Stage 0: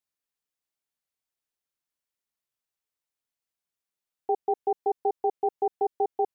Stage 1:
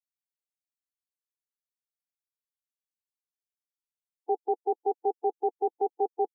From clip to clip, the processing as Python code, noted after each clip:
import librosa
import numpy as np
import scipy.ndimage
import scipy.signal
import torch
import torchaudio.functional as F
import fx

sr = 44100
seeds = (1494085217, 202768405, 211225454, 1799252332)

y = fx.bin_expand(x, sr, power=3.0)
y = scipy.signal.sosfilt(scipy.signal.butter(4, 210.0, 'highpass', fs=sr, output='sos'), y)
y = fx.low_shelf(y, sr, hz=320.0, db=6.5)
y = y * librosa.db_to_amplitude(-1.5)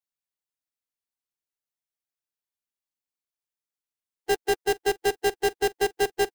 y = fx.halfwave_hold(x, sr)
y = y + 10.0 ** (-23.0 / 20.0) * np.pad(y, (int(423 * sr / 1000.0), 0))[:len(y)]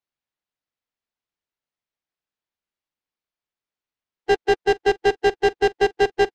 y = fx.air_absorb(x, sr, metres=150.0)
y = y * librosa.db_to_amplitude(6.5)